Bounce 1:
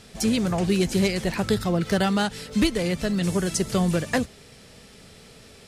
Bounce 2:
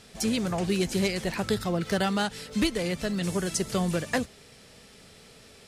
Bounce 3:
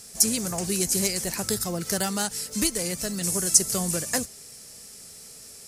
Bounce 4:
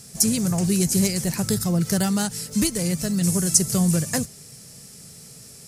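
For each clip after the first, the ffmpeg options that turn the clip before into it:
-af "lowshelf=f=280:g=-4,volume=0.75"
-af "aexciter=amount=8.9:drive=2.1:freq=5000,volume=0.75"
-af "equalizer=f=140:w=1.1:g=15"

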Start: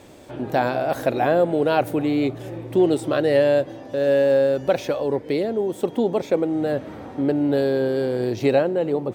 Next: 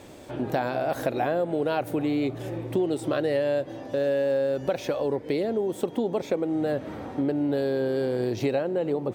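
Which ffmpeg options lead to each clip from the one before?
-af "acompressor=threshold=0.0708:ratio=4"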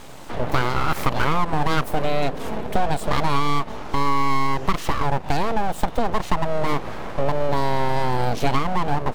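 -af "aeval=exprs='abs(val(0))':c=same,volume=2.51"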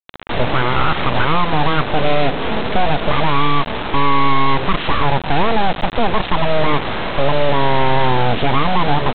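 -af "alimiter=limit=0.266:level=0:latency=1:release=14,aresample=8000,acrusher=bits=4:mix=0:aa=0.000001,aresample=44100,volume=2.24"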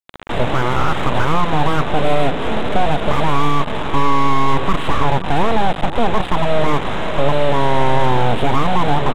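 -filter_complex "[0:a]acrossover=split=1400[s0][s1];[s0]aecho=1:1:529:0.224[s2];[s1]asoftclip=type=tanh:threshold=0.0473[s3];[s2][s3]amix=inputs=2:normalize=0"

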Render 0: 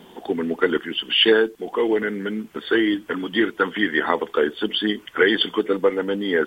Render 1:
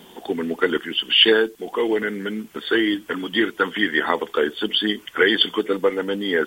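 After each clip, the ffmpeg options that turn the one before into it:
-af "highshelf=f=3100:g=8.5,volume=0.891"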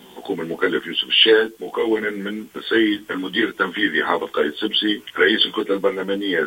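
-af "flanger=delay=15.5:depth=3:speed=0.84,volume=1.58"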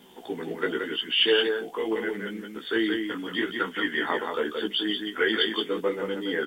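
-af "aecho=1:1:174:0.562,volume=0.376"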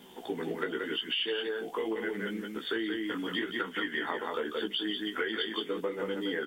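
-af "acompressor=threshold=0.0355:ratio=10"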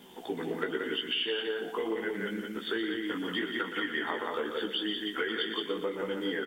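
-af "aecho=1:1:119|238|357|476|595:0.316|0.142|0.064|0.0288|0.013"

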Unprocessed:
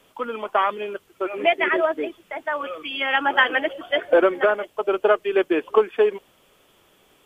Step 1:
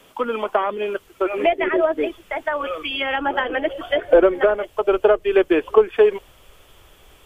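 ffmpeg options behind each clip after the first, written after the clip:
-filter_complex "[0:a]asubboost=boost=10:cutoff=66,acrossover=split=630[s0][s1];[s1]acompressor=threshold=0.0316:ratio=6[s2];[s0][s2]amix=inputs=2:normalize=0,volume=2.11"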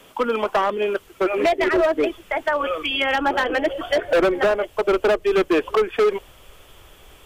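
-af "asoftclip=type=hard:threshold=0.15,volume=1.33"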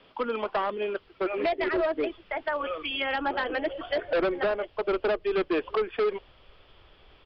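-af "aresample=11025,aresample=44100,volume=0.398"

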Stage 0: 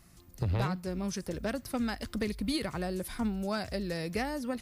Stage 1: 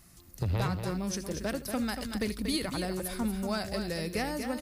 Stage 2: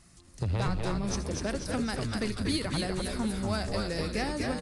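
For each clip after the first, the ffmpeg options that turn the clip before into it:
-filter_complex "[0:a]highshelf=f=5200:g=6.5,asplit=2[s0][s1];[s1]aecho=0:1:79|236:0.141|0.422[s2];[s0][s2]amix=inputs=2:normalize=0"
-filter_complex "[0:a]asplit=7[s0][s1][s2][s3][s4][s5][s6];[s1]adelay=246,afreqshift=-120,volume=0.631[s7];[s2]adelay=492,afreqshift=-240,volume=0.292[s8];[s3]adelay=738,afreqshift=-360,volume=0.133[s9];[s4]adelay=984,afreqshift=-480,volume=0.0617[s10];[s5]adelay=1230,afreqshift=-600,volume=0.0282[s11];[s6]adelay=1476,afreqshift=-720,volume=0.013[s12];[s0][s7][s8][s9][s10][s11][s12]amix=inputs=7:normalize=0,aresample=22050,aresample=44100"

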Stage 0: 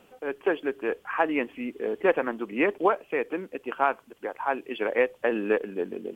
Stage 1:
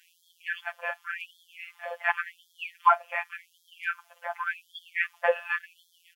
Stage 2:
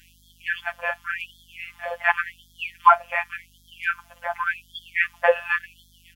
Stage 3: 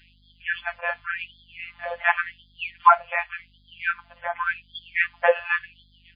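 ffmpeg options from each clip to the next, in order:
-af "aecho=1:1:6:0.68,afftfilt=real='hypot(re,im)*cos(PI*b)':imag='0':win_size=1024:overlap=0.75,afftfilt=real='re*gte(b*sr/1024,510*pow(3200/510,0.5+0.5*sin(2*PI*0.89*pts/sr)))':imag='im*gte(b*sr/1024,510*pow(3200/510,0.5+0.5*sin(2*PI*0.89*pts/sr)))':win_size=1024:overlap=0.75,volume=2.11"
-af "aeval=exprs='val(0)+0.000631*(sin(2*PI*50*n/s)+sin(2*PI*2*50*n/s)/2+sin(2*PI*3*50*n/s)/3+sin(2*PI*4*50*n/s)/4+sin(2*PI*5*50*n/s)/5)':c=same,volume=2"
-ar 11025 -c:a libmp3lame -b:a 16k

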